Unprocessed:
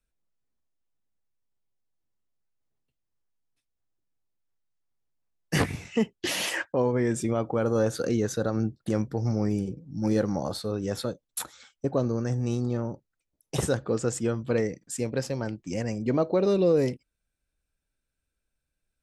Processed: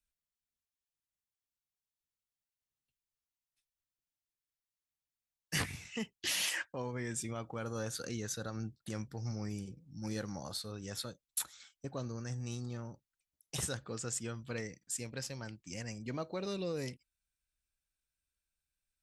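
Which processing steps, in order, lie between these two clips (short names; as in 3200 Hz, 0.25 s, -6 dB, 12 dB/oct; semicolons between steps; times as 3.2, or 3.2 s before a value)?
passive tone stack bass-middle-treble 5-5-5; gain +3.5 dB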